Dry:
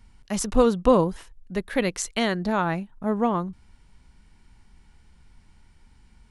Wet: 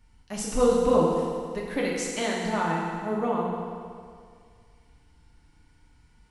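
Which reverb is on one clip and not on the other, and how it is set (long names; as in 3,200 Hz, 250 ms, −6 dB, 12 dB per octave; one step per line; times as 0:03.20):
feedback delay network reverb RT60 2.1 s, low-frequency decay 0.9×, high-frequency decay 0.9×, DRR −4 dB
level −7.5 dB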